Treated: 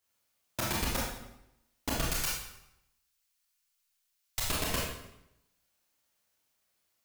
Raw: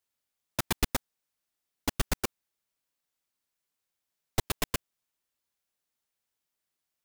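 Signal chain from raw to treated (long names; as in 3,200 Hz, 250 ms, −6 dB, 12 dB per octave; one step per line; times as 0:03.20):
0:02.03–0:04.46: guitar amp tone stack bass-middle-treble 10-0-10
brickwall limiter −23 dBFS, peak gain reduction 11 dB
convolution reverb RT60 0.85 s, pre-delay 21 ms, DRR −5 dB
level +2.5 dB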